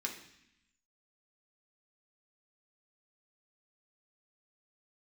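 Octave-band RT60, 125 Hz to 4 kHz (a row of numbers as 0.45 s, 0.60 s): 1.0 s, 1.1 s, 0.70 s, 0.75 s, 1.0 s, 1.0 s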